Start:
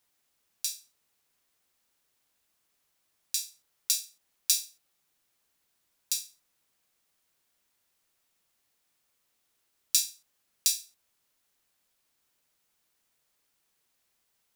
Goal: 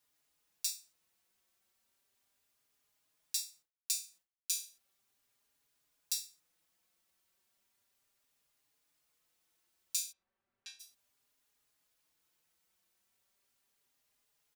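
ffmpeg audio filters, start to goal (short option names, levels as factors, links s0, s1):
-filter_complex "[0:a]asplit=3[s0][s1][s2];[s0]afade=t=out:st=3.43:d=0.02[s3];[s1]agate=range=0.0224:threshold=0.00251:ratio=3:detection=peak,afade=t=in:st=3.43:d=0.02,afade=t=out:st=4.65:d=0.02[s4];[s2]afade=t=in:st=4.65:d=0.02[s5];[s3][s4][s5]amix=inputs=3:normalize=0,asplit=3[s6][s7][s8];[s6]afade=t=out:st=10.11:d=0.02[s9];[s7]lowpass=1600,afade=t=in:st=10.11:d=0.02,afade=t=out:st=10.79:d=0.02[s10];[s8]afade=t=in:st=10.79:d=0.02[s11];[s9][s10][s11]amix=inputs=3:normalize=0,alimiter=limit=0.316:level=0:latency=1:release=259,asplit=2[s12][s13];[s13]adelay=4.4,afreqshift=0.35[s14];[s12][s14]amix=inputs=2:normalize=1"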